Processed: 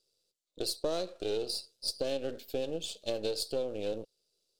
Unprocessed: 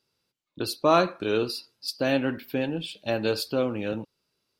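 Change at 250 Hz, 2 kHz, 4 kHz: −13.5, −17.0, −3.5 decibels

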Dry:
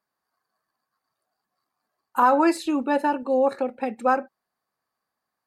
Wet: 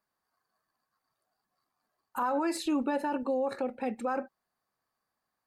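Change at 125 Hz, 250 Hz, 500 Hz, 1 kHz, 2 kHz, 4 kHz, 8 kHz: can't be measured, −7.0 dB, −9.0 dB, −11.5 dB, −10.5 dB, −3.5 dB, −3.0 dB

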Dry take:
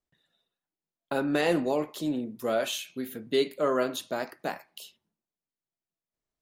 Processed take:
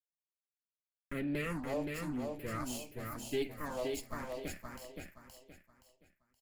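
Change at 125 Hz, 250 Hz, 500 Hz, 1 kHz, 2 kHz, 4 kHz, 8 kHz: −1.5, −8.5, −11.5, −10.5, −8.5, −12.5, −5.5 decibels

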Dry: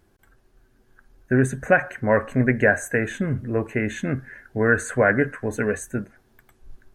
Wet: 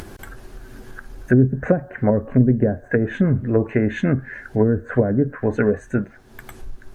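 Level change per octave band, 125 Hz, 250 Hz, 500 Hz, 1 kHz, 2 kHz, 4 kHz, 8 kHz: +6.5 dB, +6.0 dB, +1.5 dB, −5.0 dB, −7.5 dB, can't be measured, below −10 dB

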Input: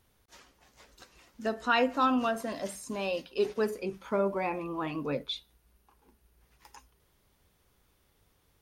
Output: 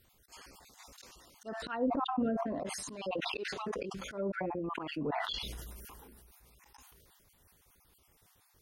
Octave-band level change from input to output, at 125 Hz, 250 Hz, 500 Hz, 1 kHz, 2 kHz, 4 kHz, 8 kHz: −2.0, −3.0, −6.5, −6.0, −6.0, −1.5, +1.0 decibels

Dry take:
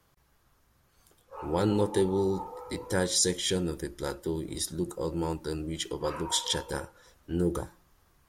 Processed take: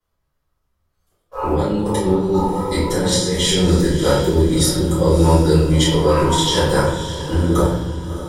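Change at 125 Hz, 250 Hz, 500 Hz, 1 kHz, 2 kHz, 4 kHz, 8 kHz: +18.0, +14.5, +13.0, +15.0, +12.5, +12.0, +8.5 decibels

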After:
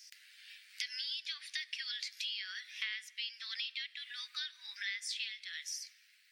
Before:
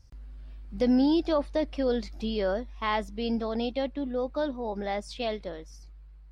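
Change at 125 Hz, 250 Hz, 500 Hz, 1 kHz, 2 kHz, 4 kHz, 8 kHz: below −40 dB, below −40 dB, below −40 dB, −29.0 dB, −0.5 dB, +3.0 dB, can't be measured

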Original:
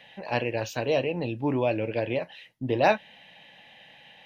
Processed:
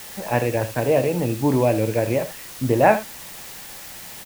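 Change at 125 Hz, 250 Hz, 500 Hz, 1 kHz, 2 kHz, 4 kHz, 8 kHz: +9.5 dB, +7.5 dB, +6.5 dB, +6.5 dB, +4.0 dB, +2.0 dB, can't be measured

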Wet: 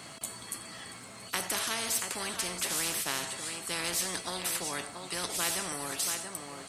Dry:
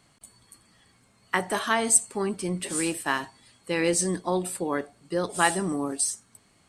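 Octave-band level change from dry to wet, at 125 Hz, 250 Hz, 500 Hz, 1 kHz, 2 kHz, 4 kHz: −11.0, −14.0, −12.0, −9.0, −6.0, +2.5 decibels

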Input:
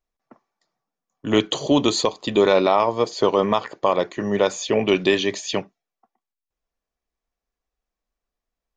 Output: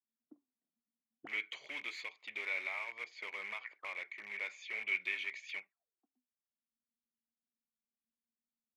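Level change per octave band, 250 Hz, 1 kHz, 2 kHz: −40.0, −28.5, −7.0 decibels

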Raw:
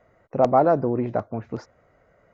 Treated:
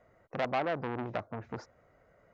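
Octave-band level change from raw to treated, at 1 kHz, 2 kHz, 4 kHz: −12.5 dB, +1.0 dB, can't be measured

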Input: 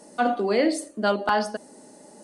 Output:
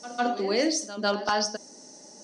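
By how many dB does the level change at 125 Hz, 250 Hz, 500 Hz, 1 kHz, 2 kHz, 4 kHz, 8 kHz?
can't be measured, −4.0 dB, −3.5 dB, −3.5 dB, −2.5 dB, +4.5 dB, +7.0 dB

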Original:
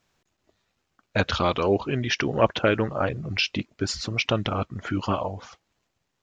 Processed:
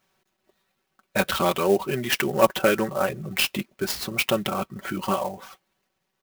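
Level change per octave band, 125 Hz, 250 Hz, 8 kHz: −5.5, 0.0, +6.0 decibels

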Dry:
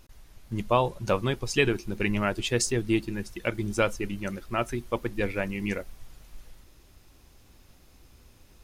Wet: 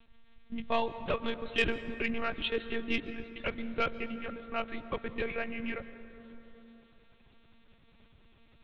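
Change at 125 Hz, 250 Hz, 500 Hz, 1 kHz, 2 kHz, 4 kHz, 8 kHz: −15.5 dB, −8.0 dB, −7.0 dB, −5.5 dB, −3.5 dB, −3.5 dB, below −25 dB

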